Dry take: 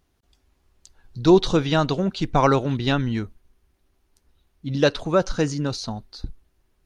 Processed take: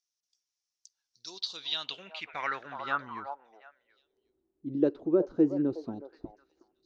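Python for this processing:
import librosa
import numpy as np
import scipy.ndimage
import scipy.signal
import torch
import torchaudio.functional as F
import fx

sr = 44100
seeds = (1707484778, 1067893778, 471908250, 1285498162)

y = fx.rider(x, sr, range_db=4, speed_s=0.5)
y = fx.echo_stepped(y, sr, ms=367, hz=700.0, octaves=1.4, feedback_pct=70, wet_db=-6)
y = fx.filter_sweep_bandpass(y, sr, from_hz=5700.0, to_hz=340.0, start_s=1.21, end_s=4.41, q=5.3)
y = y * 10.0 ** (3.0 / 20.0)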